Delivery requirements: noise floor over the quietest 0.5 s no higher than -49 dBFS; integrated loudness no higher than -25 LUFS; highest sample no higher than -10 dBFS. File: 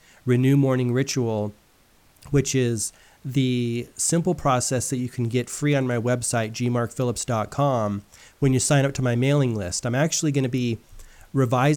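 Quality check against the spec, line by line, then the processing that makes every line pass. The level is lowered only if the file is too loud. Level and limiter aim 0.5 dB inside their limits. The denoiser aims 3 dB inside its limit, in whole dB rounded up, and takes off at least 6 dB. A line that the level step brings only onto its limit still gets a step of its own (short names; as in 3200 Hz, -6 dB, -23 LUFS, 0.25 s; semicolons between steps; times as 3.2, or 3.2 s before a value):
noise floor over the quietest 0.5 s -58 dBFS: OK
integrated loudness -23.0 LUFS: fail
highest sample -8.0 dBFS: fail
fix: gain -2.5 dB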